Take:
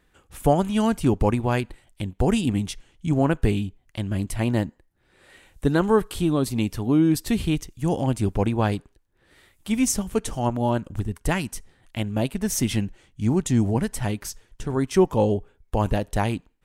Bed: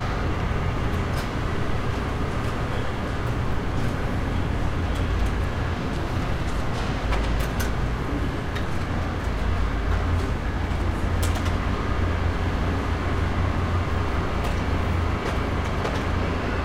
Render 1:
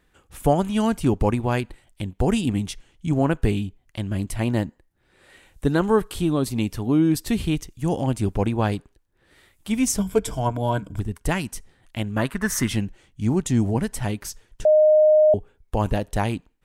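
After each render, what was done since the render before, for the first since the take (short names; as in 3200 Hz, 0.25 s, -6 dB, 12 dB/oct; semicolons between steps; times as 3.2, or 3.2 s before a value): 9.98–10.99 ripple EQ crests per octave 1.7, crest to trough 11 dB; 12.17–12.69 band shelf 1400 Hz +13.5 dB 1.2 oct; 14.65–15.34 bleep 615 Hz -11.5 dBFS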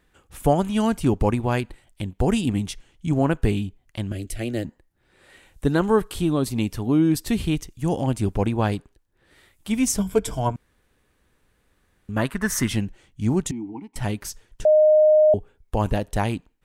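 4.12–4.65 fixed phaser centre 400 Hz, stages 4; 10.56–12.09 room tone; 13.51–13.96 vowel filter u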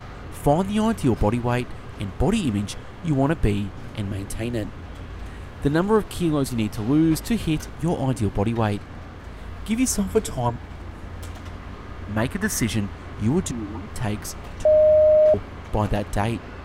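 add bed -12 dB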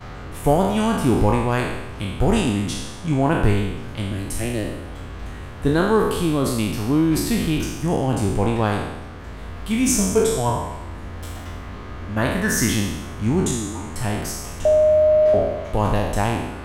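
spectral trails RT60 1.07 s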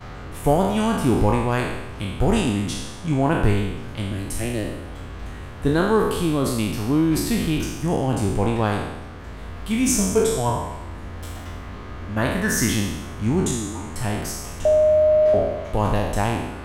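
gain -1 dB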